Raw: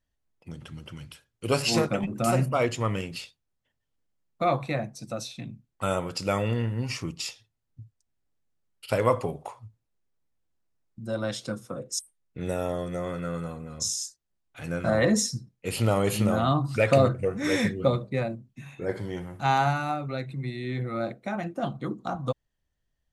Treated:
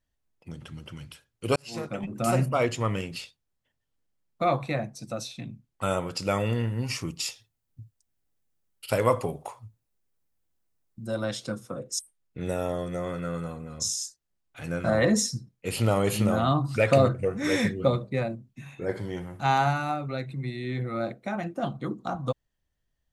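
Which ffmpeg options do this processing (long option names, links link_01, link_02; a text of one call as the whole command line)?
ffmpeg -i in.wav -filter_complex "[0:a]asettb=1/sr,asplit=3[link_01][link_02][link_03];[link_01]atrim=end=6.404[link_04];[link_02]atrim=start=6.4:end=11.25,asetpts=PTS-STARTPTS,afade=type=in:duration=0.004:curve=qsin,afade=type=out:start_time=4.846:duration=0.004:curve=qsin,highshelf=frequency=9100:gain=10[link_05];[link_03]atrim=start=11.246[link_06];[link_04][link_05]acrossfade=duration=0.004:curve1=hsin:curve2=qsin[link_07];[link_07][link_06]acrossfade=duration=0.004:curve1=qsin:curve2=hsin,asplit=2[link_08][link_09];[link_08]atrim=end=1.56,asetpts=PTS-STARTPTS,afade=type=out:start_time=1.556:duration=0.004:curve=hsin[link_10];[link_09]atrim=start=1.56,asetpts=PTS-STARTPTS,afade=type=in:duration=0.8[link_11];[link_10][link_11]concat=n=2:v=0:a=1" out.wav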